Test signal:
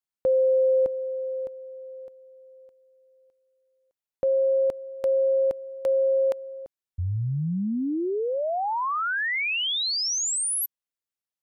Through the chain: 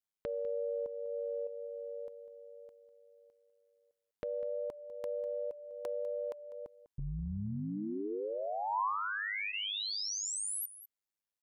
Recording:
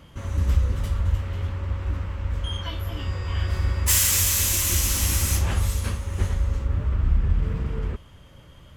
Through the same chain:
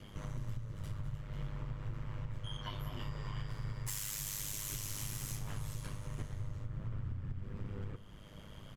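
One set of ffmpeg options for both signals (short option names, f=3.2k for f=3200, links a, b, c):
-filter_complex "[0:a]bandreject=f=2.6k:w=23,aeval=exprs='val(0)*sin(2*PI*51*n/s)':c=same,acompressor=threshold=-33dB:ratio=8:attack=0.89:release=769:knee=6:detection=peak,adynamicequalizer=threshold=0.001:dfrequency=1000:dqfactor=4.5:tfrequency=1000:tqfactor=4.5:attack=5:release=100:ratio=0.375:range=3.5:mode=boostabove:tftype=bell,asplit=2[a][b];[b]aecho=0:1:199:0.178[c];[a][c]amix=inputs=2:normalize=0"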